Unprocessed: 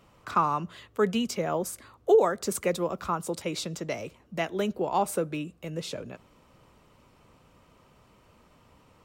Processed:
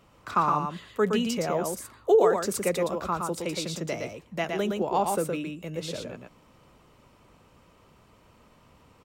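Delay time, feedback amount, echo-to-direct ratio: 116 ms, repeats not evenly spaced, −4.0 dB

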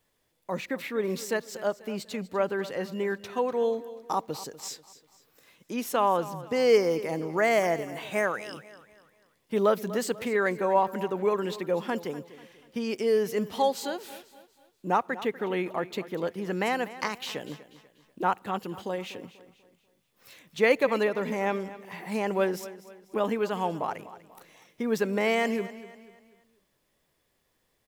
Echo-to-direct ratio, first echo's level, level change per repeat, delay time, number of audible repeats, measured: −15.5 dB, −16.0 dB, −8.0 dB, 244 ms, 3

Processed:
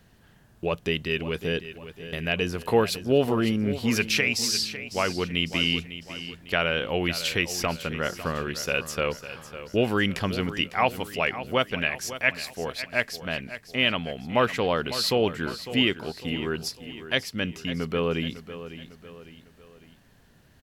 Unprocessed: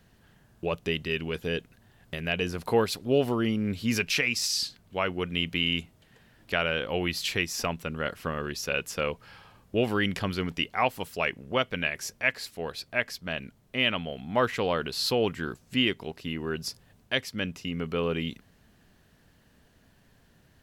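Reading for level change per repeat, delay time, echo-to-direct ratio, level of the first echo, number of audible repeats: −7.0 dB, 552 ms, −12.0 dB, −13.0 dB, 3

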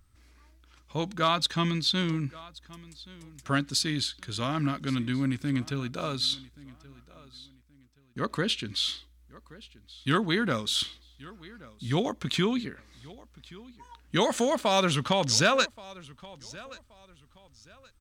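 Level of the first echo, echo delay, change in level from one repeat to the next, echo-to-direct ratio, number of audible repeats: −21.0 dB, 1,126 ms, −11.0 dB, −20.5 dB, 2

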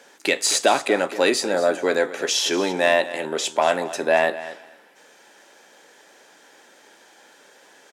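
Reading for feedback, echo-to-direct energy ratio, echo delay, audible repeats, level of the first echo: 16%, −15.0 dB, 233 ms, 2, −15.0 dB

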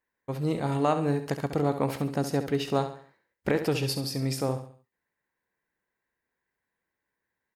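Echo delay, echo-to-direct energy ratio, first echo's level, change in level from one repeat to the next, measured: 68 ms, −9.5 dB, −10.0 dB, −8.0 dB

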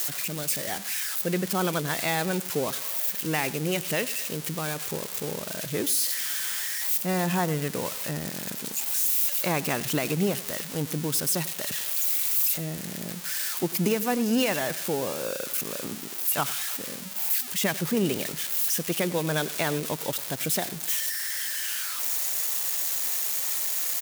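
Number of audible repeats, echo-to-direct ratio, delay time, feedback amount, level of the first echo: 2, −17.5 dB, 97 ms, 35%, −18.0 dB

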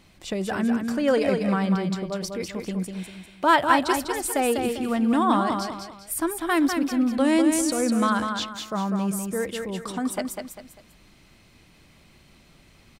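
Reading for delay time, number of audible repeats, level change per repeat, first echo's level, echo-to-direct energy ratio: 198 ms, 3, −9.0 dB, −5.5 dB, −5.0 dB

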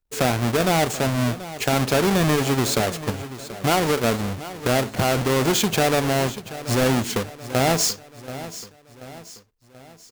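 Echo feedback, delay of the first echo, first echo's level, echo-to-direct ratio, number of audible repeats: 48%, 733 ms, −15.0 dB, −14.0 dB, 4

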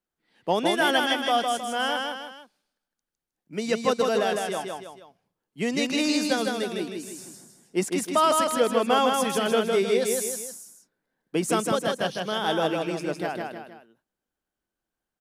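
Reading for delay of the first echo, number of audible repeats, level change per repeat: 157 ms, 3, −7.0 dB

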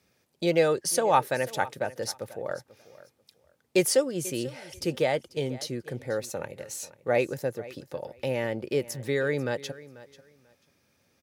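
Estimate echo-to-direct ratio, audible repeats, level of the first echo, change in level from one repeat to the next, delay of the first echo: −18.5 dB, 2, −18.5 dB, −14.0 dB, 490 ms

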